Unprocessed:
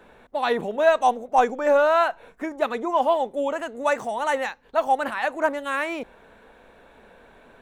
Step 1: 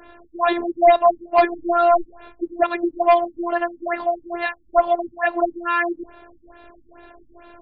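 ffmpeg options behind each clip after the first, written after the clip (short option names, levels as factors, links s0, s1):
-af "afftfilt=real='hypot(re,im)*cos(PI*b)':imag='0':win_size=512:overlap=0.75,aeval=exprs='0.447*sin(PI/2*2*val(0)/0.447)':c=same,afftfilt=real='re*lt(b*sr/1024,290*pow(5100/290,0.5+0.5*sin(2*PI*2.3*pts/sr)))':imag='im*lt(b*sr/1024,290*pow(5100/290,0.5+0.5*sin(2*PI*2.3*pts/sr)))':win_size=1024:overlap=0.75"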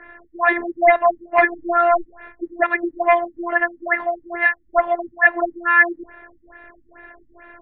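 -af "lowpass=f=1900:t=q:w=7.1,volume=0.75"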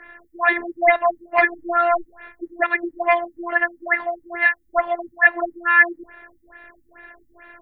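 -af "crystalizer=i=4.5:c=0,volume=0.631"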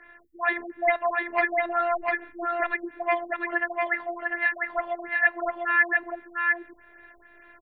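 -af "aecho=1:1:699:0.708,volume=0.422"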